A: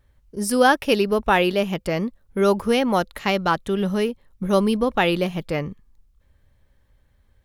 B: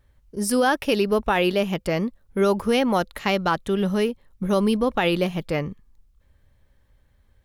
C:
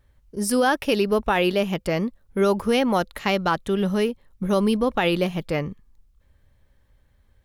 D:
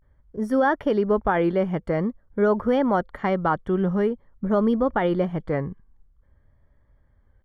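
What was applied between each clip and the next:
peak limiter -11 dBFS, peak gain reduction 6 dB
no audible change
vibrato 0.48 Hz 93 cents; Savitzky-Golay filter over 41 samples

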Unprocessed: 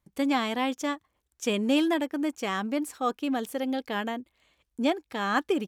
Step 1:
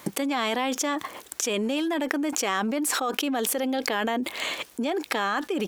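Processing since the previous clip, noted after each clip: high-pass 300 Hz 12 dB/octave; level flattener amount 100%; trim -3.5 dB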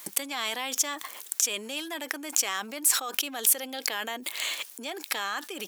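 tilt EQ +4 dB/octave; trim -7 dB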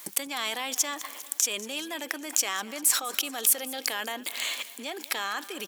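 feedback delay 198 ms, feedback 60%, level -18 dB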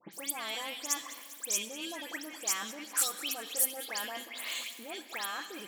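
phase dispersion highs, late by 135 ms, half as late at 2.9 kHz; on a send at -9.5 dB: reverberation RT60 1.8 s, pre-delay 6 ms; on the sum: trim -6.5 dB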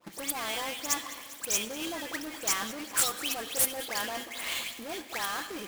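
square wave that keeps the level

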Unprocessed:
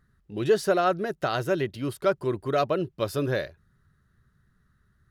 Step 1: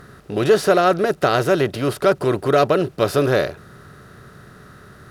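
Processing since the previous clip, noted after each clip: spectral levelling over time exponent 0.6; trim +5.5 dB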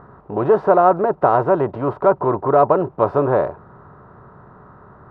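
resonant low-pass 950 Hz, resonance Q 5.2; trim -2 dB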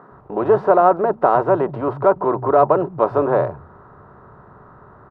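bands offset in time highs, lows 120 ms, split 160 Hz

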